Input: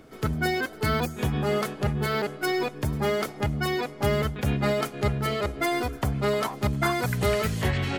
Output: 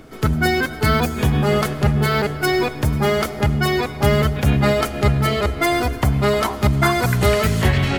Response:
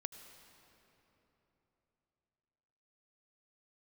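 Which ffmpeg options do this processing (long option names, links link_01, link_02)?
-filter_complex "[0:a]equalizer=frequency=480:width_type=o:width=0.77:gain=-2,asplit=2[link_01][link_02];[1:a]atrim=start_sample=2205,lowshelf=frequency=70:gain=9[link_03];[link_02][link_03]afir=irnorm=-1:irlink=0,volume=4dB[link_04];[link_01][link_04]amix=inputs=2:normalize=0,volume=1.5dB"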